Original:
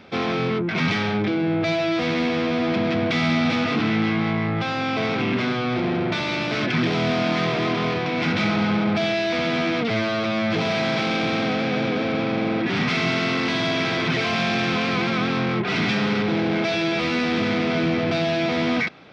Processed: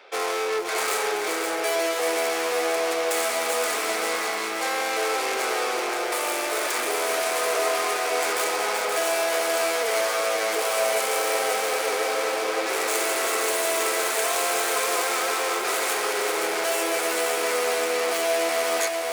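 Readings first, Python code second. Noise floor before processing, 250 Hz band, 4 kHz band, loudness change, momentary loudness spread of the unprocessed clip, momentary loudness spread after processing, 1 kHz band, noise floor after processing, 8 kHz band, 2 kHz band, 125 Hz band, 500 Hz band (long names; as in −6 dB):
−25 dBFS, −16.5 dB, −1.5 dB, −1.5 dB, 2 LU, 3 LU, +1.5 dB, −27 dBFS, can't be measured, −1.5 dB, below −35 dB, +0.5 dB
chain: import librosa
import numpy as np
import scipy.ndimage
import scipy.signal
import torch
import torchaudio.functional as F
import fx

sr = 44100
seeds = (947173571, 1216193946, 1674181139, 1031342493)

y = fx.tracing_dist(x, sr, depth_ms=0.37)
y = scipy.signal.sosfilt(scipy.signal.cheby1(4, 1.0, 420.0, 'highpass', fs=sr, output='sos'), y)
y = fx.echo_feedback(y, sr, ms=526, feedback_pct=40, wet_db=-5)
y = fx.echo_crushed(y, sr, ms=380, feedback_pct=35, bits=7, wet_db=-8.5)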